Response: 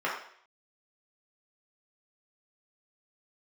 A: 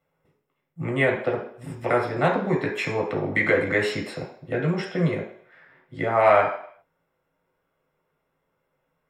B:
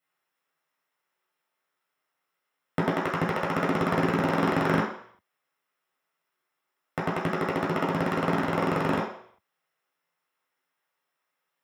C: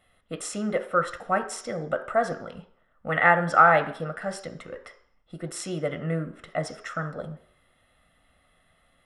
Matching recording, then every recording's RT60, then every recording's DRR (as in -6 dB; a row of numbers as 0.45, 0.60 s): B; 0.60, 0.60, 0.60 s; -1.5, -5.5, 7.5 dB